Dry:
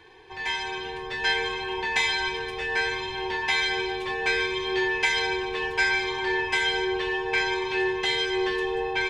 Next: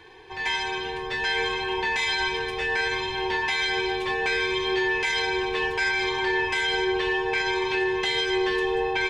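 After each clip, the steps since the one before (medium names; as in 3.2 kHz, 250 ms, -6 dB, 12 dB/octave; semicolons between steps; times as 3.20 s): peak limiter -19 dBFS, peak gain reduction 8.5 dB; trim +3 dB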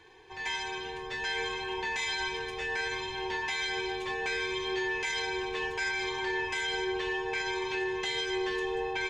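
peaking EQ 6.7 kHz +8 dB 0.34 oct; trim -7.5 dB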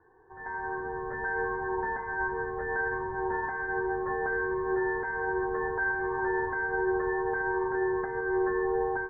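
steep low-pass 1.7 kHz 96 dB/octave; level rider gain up to 9 dB; trim -4 dB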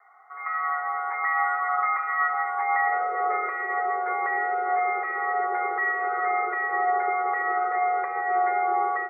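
frequency shift +350 Hz; high-pass sweep 980 Hz -> 290 Hz, 2.53–3.68 s; trim +3 dB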